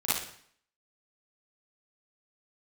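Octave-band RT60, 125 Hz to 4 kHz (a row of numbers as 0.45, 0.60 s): 0.65, 0.65, 0.60, 0.60, 0.60, 0.55 s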